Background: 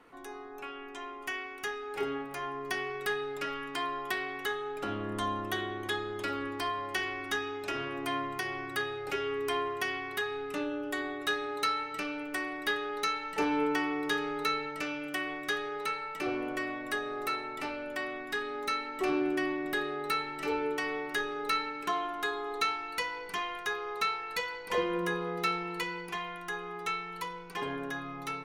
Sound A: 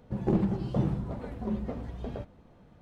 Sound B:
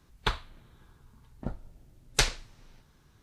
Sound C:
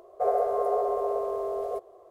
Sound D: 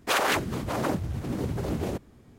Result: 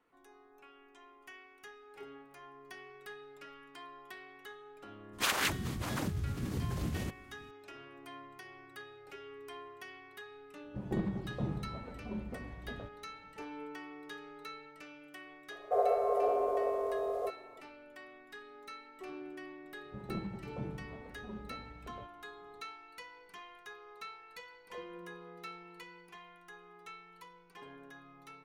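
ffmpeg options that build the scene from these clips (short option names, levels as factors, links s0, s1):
-filter_complex "[1:a]asplit=2[s0][s1];[0:a]volume=0.158[s2];[4:a]equalizer=f=570:w=0.58:g=-11.5,atrim=end=2.38,asetpts=PTS-STARTPTS,volume=0.75,afade=t=in:d=0.004:c=hsin,afade=t=out:st=2.376:d=0.004:c=hsin,adelay=226233S[s3];[s0]atrim=end=2.81,asetpts=PTS-STARTPTS,volume=0.376,afade=t=in:d=0.004:c=hsin,afade=t=out:st=2.806:d=0.004:c=hsin,adelay=10640[s4];[3:a]atrim=end=2.1,asetpts=PTS-STARTPTS,volume=0.631,afade=t=in:d=0.004:c=hsin,afade=t=out:st=2.096:d=0.004:c=hsin,adelay=15510[s5];[s1]atrim=end=2.81,asetpts=PTS-STARTPTS,volume=0.2,afade=t=in:d=0.004:c=hsin,afade=t=out:st=2.806:d=0.004:c=hsin,adelay=19820[s6];[s2][s3][s4][s5][s6]amix=inputs=5:normalize=0"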